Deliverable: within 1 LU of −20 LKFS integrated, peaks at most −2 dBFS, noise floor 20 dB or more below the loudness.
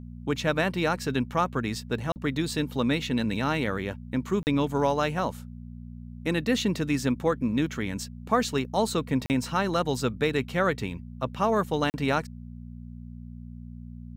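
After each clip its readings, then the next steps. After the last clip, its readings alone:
number of dropouts 4; longest dropout 39 ms; mains hum 60 Hz; hum harmonics up to 240 Hz; level of the hum −38 dBFS; integrated loudness −27.5 LKFS; sample peak −9.5 dBFS; target loudness −20.0 LKFS
→ repair the gap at 0:02.12/0:04.43/0:09.26/0:11.90, 39 ms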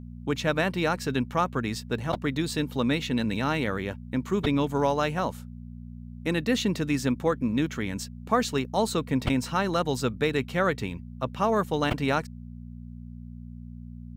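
number of dropouts 0; mains hum 60 Hz; hum harmonics up to 240 Hz; level of the hum −39 dBFS
→ hum removal 60 Hz, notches 4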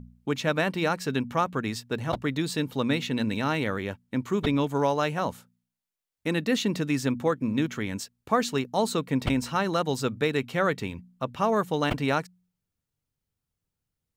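mains hum none found; integrated loudness −27.5 LKFS; sample peak −10.0 dBFS; target loudness −20.0 LKFS
→ level +7.5 dB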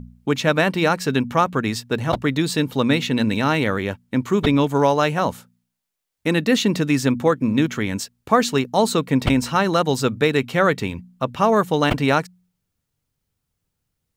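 integrated loudness −20.0 LKFS; sample peak −2.5 dBFS; background noise floor −78 dBFS

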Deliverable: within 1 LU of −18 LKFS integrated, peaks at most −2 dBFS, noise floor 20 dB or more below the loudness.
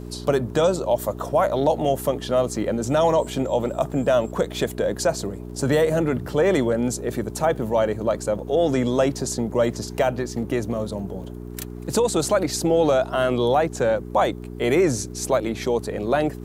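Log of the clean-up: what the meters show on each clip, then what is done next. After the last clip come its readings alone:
crackle rate 22 per second; mains hum 60 Hz; hum harmonics up to 420 Hz; level of the hum −32 dBFS; integrated loudness −22.5 LKFS; sample peak −8.5 dBFS; target loudness −18.0 LKFS
→ click removal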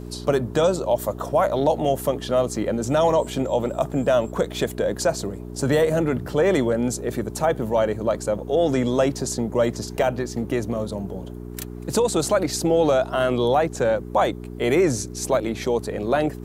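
crackle rate 0 per second; mains hum 60 Hz; hum harmonics up to 420 Hz; level of the hum −32 dBFS
→ hum removal 60 Hz, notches 7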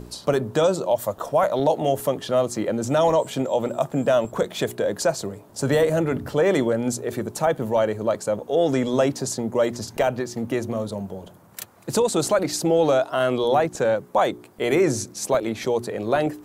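mains hum none found; integrated loudness −23.0 LKFS; sample peak −8.5 dBFS; target loudness −18.0 LKFS
→ level +5 dB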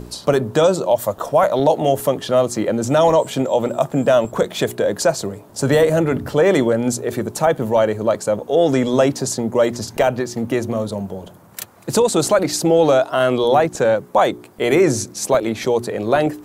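integrated loudness −18.0 LKFS; sample peak −3.5 dBFS; background noise floor −43 dBFS

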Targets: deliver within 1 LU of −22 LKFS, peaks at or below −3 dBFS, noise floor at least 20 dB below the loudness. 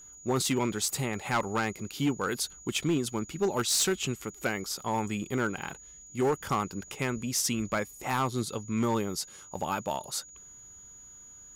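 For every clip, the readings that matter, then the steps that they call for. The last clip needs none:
share of clipped samples 0.8%; peaks flattened at −21.0 dBFS; interfering tone 6,800 Hz; level of the tone −48 dBFS; integrated loudness −30.5 LKFS; sample peak −21.0 dBFS; target loudness −22.0 LKFS
→ clipped peaks rebuilt −21 dBFS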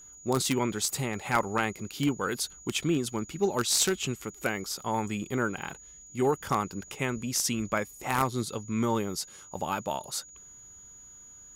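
share of clipped samples 0.0%; interfering tone 6,800 Hz; level of the tone −48 dBFS
→ notch filter 6,800 Hz, Q 30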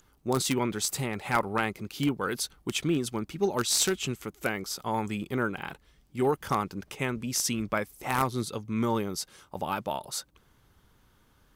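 interfering tone none found; integrated loudness −30.0 LKFS; sample peak −12.0 dBFS; target loudness −22.0 LKFS
→ level +8 dB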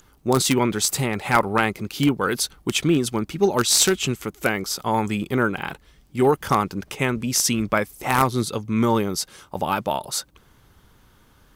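integrated loudness −22.0 LKFS; sample peak −4.0 dBFS; background noise floor −56 dBFS

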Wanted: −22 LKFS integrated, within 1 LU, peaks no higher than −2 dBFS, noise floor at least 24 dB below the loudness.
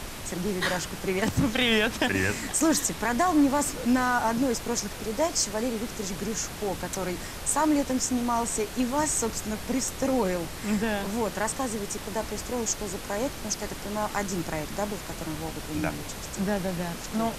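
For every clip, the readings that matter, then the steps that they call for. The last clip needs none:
number of dropouts 2; longest dropout 1.1 ms; background noise floor −38 dBFS; target noise floor −52 dBFS; integrated loudness −27.5 LKFS; sample peak −13.0 dBFS; target loudness −22.0 LKFS
→ repair the gap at 0:14.39/0:15.46, 1.1 ms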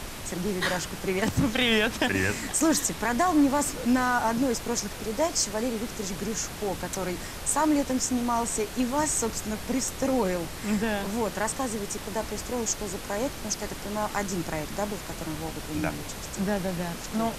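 number of dropouts 0; background noise floor −38 dBFS; target noise floor −52 dBFS
→ noise reduction from a noise print 14 dB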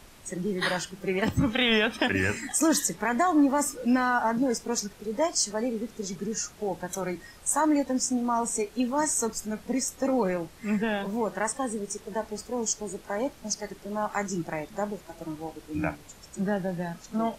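background noise floor −51 dBFS; target noise floor −52 dBFS
→ noise reduction from a noise print 6 dB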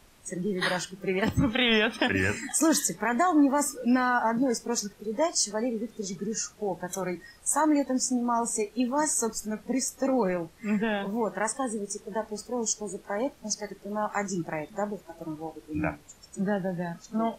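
background noise floor −55 dBFS; integrated loudness −28.0 LKFS; sample peak −13.0 dBFS; target loudness −22.0 LKFS
→ level +6 dB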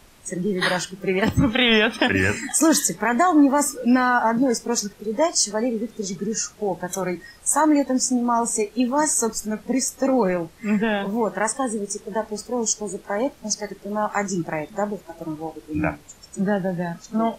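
integrated loudness −22.0 LKFS; sample peak −7.0 dBFS; background noise floor −49 dBFS

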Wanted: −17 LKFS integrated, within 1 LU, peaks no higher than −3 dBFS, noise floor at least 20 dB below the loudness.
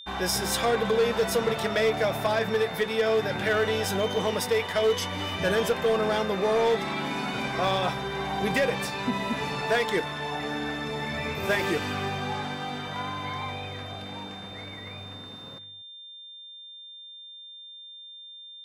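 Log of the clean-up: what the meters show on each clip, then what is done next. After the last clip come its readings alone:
share of clipped samples 1.0%; peaks flattened at −18.0 dBFS; interfering tone 3,600 Hz; level of the tone −42 dBFS; integrated loudness −27.0 LKFS; sample peak −18.0 dBFS; target loudness −17.0 LKFS
→ clipped peaks rebuilt −18 dBFS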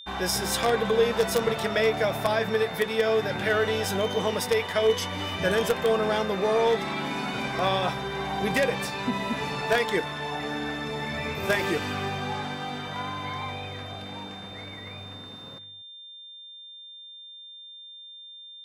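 share of clipped samples 0.0%; interfering tone 3,600 Hz; level of the tone −42 dBFS
→ notch filter 3,600 Hz, Q 30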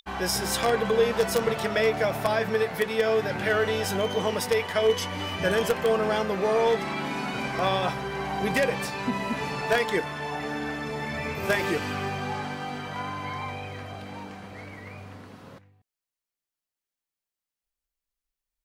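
interfering tone none found; integrated loudness −26.5 LKFS; sample peak −9.0 dBFS; target loudness −17.0 LKFS
→ level +9.5 dB
brickwall limiter −3 dBFS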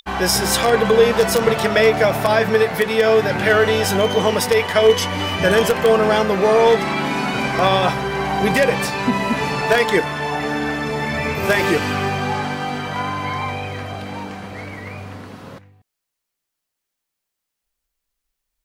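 integrated loudness −17.5 LKFS; sample peak −3.0 dBFS; background noise floor −81 dBFS

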